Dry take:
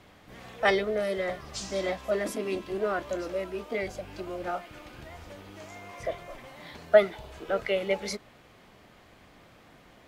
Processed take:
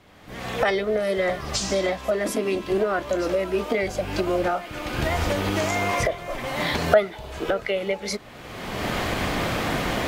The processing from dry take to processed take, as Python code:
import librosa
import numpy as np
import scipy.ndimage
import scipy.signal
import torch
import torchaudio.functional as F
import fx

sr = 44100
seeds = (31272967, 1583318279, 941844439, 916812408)

y = fx.recorder_agc(x, sr, target_db=-15.0, rise_db_per_s=31.0, max_gain_db=30)